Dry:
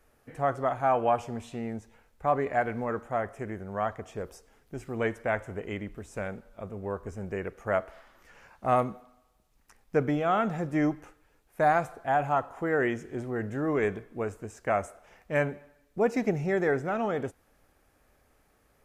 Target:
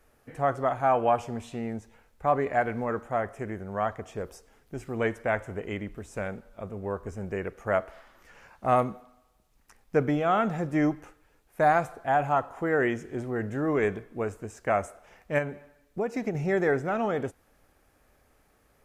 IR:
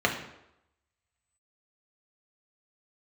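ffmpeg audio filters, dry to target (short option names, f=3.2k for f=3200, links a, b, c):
-filter_complex "[0:a]asettb=1/sr,asplit=3[a][b][c];[a]atrim=end=15.384[d];[b]atrim=start=15.38:end=16.35,asetpts=PTS-STARTPTS,afade=t=in:d=0.004:c=qsin,afade=t=out:st=0.966:d=0.004:c=qsin,acompressor=threshold=-28dB:ratio=5[e];[c]atrim=start=16.346[f];[d][e]acrossfade=d=0.004:c1=hsin:c2=qsin[g];[g][f]acrossfade=d=0.004:c1=qsin:c2=hsin,volume=1.5dB"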